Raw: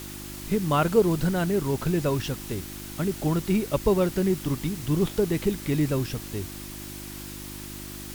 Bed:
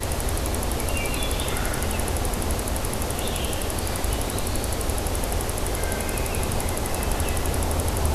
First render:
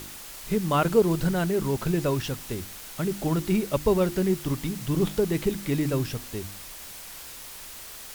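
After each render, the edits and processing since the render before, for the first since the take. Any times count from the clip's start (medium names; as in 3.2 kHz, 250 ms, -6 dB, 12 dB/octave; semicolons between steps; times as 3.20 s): de-hum 50 Hz, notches 7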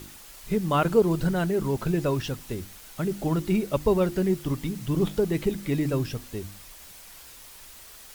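noise reduction 6 dB, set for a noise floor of -42 dBFS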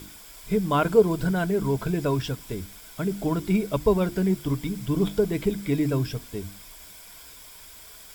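rippled EQ curve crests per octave 1.7, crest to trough 7 dB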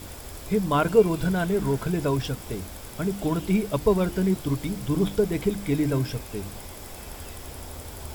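add bed -15.5 dB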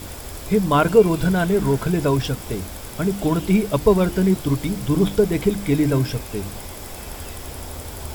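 trim +5.5 dB; peak limiter -3 dBFS, peak gain reduction 1.5 dB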